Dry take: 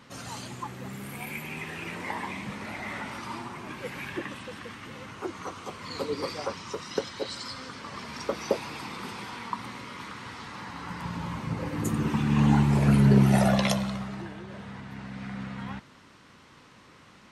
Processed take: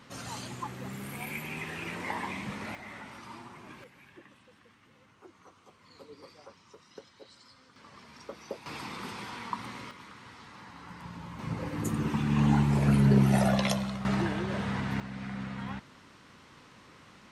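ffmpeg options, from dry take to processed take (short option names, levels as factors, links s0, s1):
-af "asetnsamples=n=441:p=0,asendcmd='2.75 volume volume -9dB;3.84 volume volume -19dB;7.76 volume volume -13dB;8.66 volume volume -2dB;9.91 volume volume -9dB;11.39 volume volume -3dB;14.05 volume volume 9dB;15 volume volume -1dB',volume=0.891"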